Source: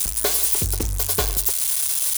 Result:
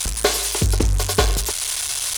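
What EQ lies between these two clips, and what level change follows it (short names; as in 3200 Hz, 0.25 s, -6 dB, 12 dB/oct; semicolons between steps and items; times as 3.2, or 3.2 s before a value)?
air absorption 61 m; +7.0 dB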